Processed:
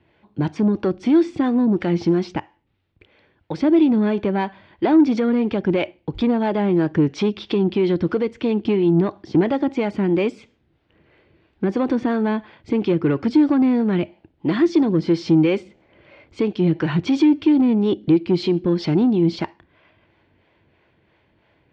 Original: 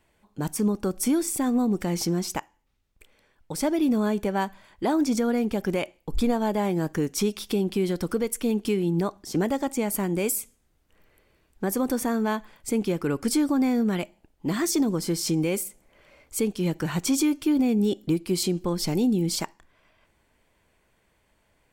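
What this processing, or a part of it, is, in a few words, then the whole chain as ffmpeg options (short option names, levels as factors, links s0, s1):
guitar amplifier with harmonic tremolo: -filter_complex "[0:a]lowpass=7200,acrossover=split=400[s0][s1];[s0]aeval=exprs='val(0)*(1-0.5/2+0.5/2*cos(2*PI*3*n/s))':c=same[s2];[s1]aeval=exprs='val(0)*(1-0.5/2-0.5/2*cos(2*PI*3*n/s))':c=same[s3];[s2][s3]amix=inputs=2:normalize=0,asoftclip=type=tanh:threshold=0.0841,highpass=76,equalizer=f=93:t=q:w=4:g=7,equalizer=f=140:t=q:w=4:g=5,equalizer=f=330:t=q:w=4:g=7,equalizer=f=1200:t=q:w=4:g=-3,lowpass=f=3800:w=0.5412,lowpass=f=3800:w=1.3066,volume=2.66"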